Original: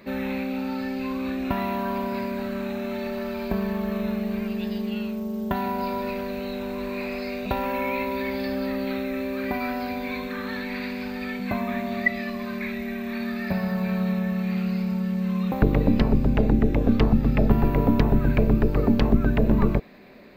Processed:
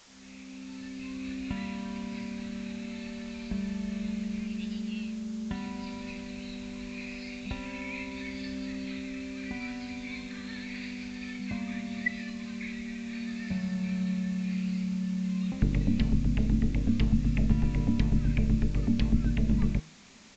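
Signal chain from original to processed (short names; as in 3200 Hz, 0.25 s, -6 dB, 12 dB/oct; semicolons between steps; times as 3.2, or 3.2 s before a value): opening faded in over 1.31 s; band shelf 720 Hz -13 dB 2.5 oct; de-hum 157.1 Hz, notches 29; in parallel at -8 dB: requantised 6-bit, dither triangular; on the sum: downsampling 16000 Hz; gain -8 dB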